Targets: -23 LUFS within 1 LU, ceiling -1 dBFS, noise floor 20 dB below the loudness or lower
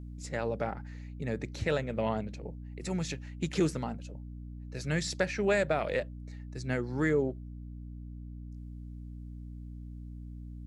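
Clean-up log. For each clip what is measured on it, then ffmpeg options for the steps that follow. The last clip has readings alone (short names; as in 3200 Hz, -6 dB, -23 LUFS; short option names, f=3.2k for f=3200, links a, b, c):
hum 60 Hz; harmonics up to 300 Hz; hum level -41 dBFS; loudness -33.0 LUFS; peak -14.5 dBFS; loudness target -23.0 LUFS
-> -af "bandreject=f=60:t=h:w=4,bandreject=f=120:t=h:w=4,bandreject=f=180:t=h:w=4,bandreject=f=240:t=h:w=4,bandreject=f=300:t=h:w=4"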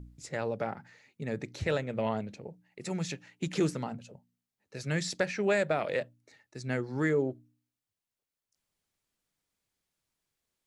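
hum none; loudness -33.0 LUFS; peak -15.0 dBFS; loudness target -23.0 LUFS
-> -af "volume=10dB"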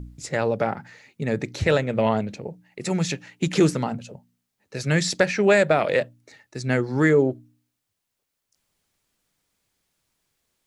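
loudness -23.0 LUFS; peak -5.0 dBFS; noise floor -80 dBFS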